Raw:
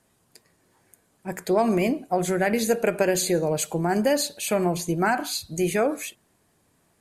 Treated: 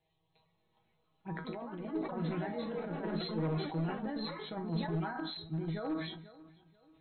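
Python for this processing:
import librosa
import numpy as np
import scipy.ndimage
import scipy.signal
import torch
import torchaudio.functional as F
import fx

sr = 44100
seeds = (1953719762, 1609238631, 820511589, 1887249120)

p1 = fx.peak_eq(x, sr, hz=560.0, db=-9.5, octaves=0.59)
p2 = fx.over_compress(p1, sr, threshold_db=-27.0, ratio=-0.5)
p3 = fx.env_phaser(p2, sr, low_hz=230.0, high_hz=2600.0, full_db=-30.0)
p4 = fx.comb_fb(p3, sr, f0_hz=160.0, decay_s=0.2, harmonics='all', damping=0.0, mix_pct=90)
p5 = np.clip(10.0 ** (30.5 / 20.0) * p4, -1.0, 1.0) / 10.0 ** (30.5 / 20.0)
p6 = fx.echo_pitch(p5, sr, ms=504, semitones=5, count=3, db_per_echo=-6.0)
p7 = fx.brickwall_lowpass(p6, sr, high_hz=4200.0)
p8 = p7 + fx.echo_feedback(p7, sr, ms=490, feedback_pct=39, wet_db=-20, dry=0)
y = fx.sustainer(p8, sr, db_per_s=60.0)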